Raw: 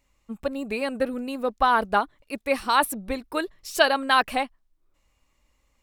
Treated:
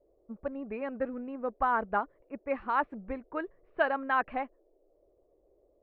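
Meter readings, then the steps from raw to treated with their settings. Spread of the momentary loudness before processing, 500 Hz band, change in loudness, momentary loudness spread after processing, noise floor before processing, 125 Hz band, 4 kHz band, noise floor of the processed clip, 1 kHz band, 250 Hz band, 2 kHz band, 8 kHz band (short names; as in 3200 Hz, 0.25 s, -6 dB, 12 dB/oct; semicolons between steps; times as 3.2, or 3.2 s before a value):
12 LU, -7.5 dB, -8.0 dB, 12 LU, -71 dBFS, n/a, -24.0 dB, -69 dBFS, -7.5 dB, -7.5 dB, -8.5 dB, under -40 dB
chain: low-pass opened by the level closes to 670 Hz, open at -20 dBFS; LPF 2000 Hz 24 dB/oct; band noise 320–630 Hz -61 dBFS; gain -7.5 dB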